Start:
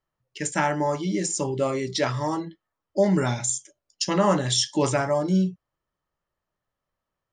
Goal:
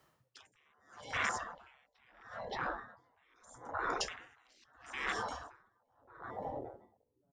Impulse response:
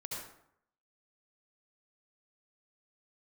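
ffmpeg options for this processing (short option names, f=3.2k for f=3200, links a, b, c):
-filter_complex "[0:a]asettb=1/sr,asplit=3[a][b][c];[a]atrim=end=1.174[d];[b]atrim=start=1.17:end=3.36,asetpts=PTS-STARTPTS,afade=t=in:d=0.004:c=qsin,afade=t=out:st=2.186:d=0.004:c=qsin,lowpass=3.1k[e];[c]atrim=start=3.356[f];[d][e]acrossfade=d=0.004:c1=hsin:c2=qsin[g];[g][f]acrossfade=d=0.004:c1=qsin:c2=hsin,asplit=2[h][i];[i]adelay=570,lowpass=f=900:p=1,volume=-5dB,asplit=2[j][k];[k]adelay=570,lowpass=f=900:p=1,volume=0.36,asplit=2[l][m];[m]adelay=570,lowpass=f=900:p=1,volume=0.36,asplit=2[n][o];[o]adelay=570,lowpass=f=900:p=1,volume=0.36[p];[h][j][l][n][p]amix=inputs=5:normalize=0,acrossover=split=320|2200[q][r][s];[q]acompressor=threshold=-30dB:ratio=4[t];[r]acompressor=threshold=-31dB:ratio=4[u];[s]acompressor=threshold=-44dB:ratio=4[v];[t][u][v]amix=inputs=3:normalize=0,apsyclip=24.5dB,highpass=88,bandreject=f=60:t=h:w=6,bandreject=f=120:t=h:w=6,bandreject=f=180:t=h:w=6,bandreject=f=240:t=h:w=6,afwtdn=0.141,acompressor=threshold=-21dB:ratio=12,afftfilt=real='re*lt(hypot(re,im),0.0562)':imag='im*lt(hypot(re,im),0.0562)':win_size=1024:overlap=0.75,aeval=exprs='val(0)*pow(10,-39*(0.5-0.5*cos(2*PI*0.77*n/s))/20)':c=same,volume=8.5dB"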